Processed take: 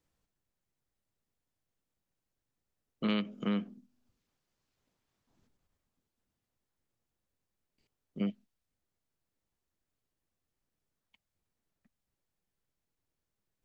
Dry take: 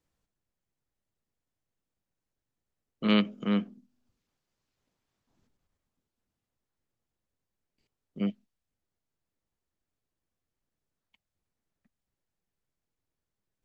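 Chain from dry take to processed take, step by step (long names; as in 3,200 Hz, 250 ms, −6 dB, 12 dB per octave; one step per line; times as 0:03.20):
downward compressor 6 to 1, threshold −28 dBFS, peak gain reduction 9 dB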